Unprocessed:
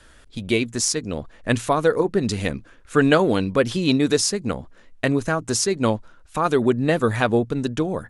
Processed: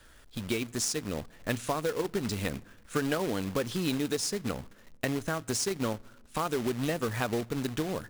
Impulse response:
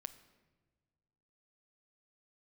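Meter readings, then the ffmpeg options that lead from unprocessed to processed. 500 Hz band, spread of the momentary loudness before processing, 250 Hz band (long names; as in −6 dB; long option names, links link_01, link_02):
−11.5 dB, 11 LU, −10.5 dB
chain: -filter_complex "[0:a]acrusher=bits=2:mode=log:mix=0:aa=0.000001,acompressor=threshold=-21dB:ratio=4,asplit=2[link_01][link_02];[1:a]atrim=start_sample=2205,asetrate=42777,aresample=44100[link_03];[link_02][link_03]afir=irnorm=-1:irlink=0,volume=-7.5dB[link_04];[link_01][link_04]amix=inputs=2:normalize=0,volume=-8dB"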